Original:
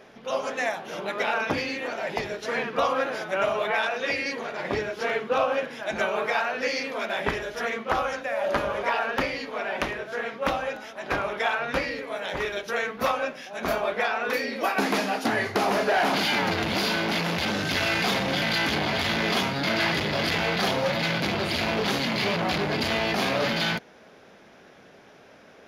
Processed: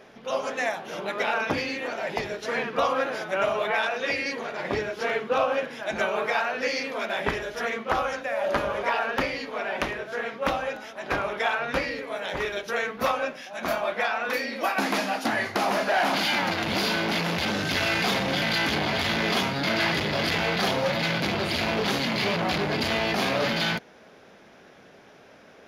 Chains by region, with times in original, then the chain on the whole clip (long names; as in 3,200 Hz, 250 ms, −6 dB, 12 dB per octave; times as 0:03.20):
0:13.37–0:16.68: low-shelf EQ 110 Hz −9.5 dB + notch filter 420 Hz, Q 5.3
whole clip: no processing